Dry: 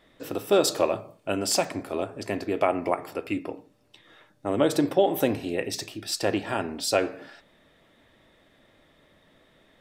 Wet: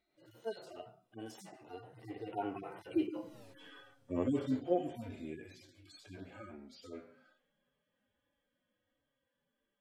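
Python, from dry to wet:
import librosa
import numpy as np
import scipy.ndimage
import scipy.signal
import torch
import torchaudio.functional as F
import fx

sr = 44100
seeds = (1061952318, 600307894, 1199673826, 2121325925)

y = fx.hpss_only(x, sr, part='harmonic')
y = fx.doppler_pass(y, sr, speed_mps=37, closest_m=3.2, pass_at_s=3.41)
y = y * 10.0 ** (13.5 / 20.0)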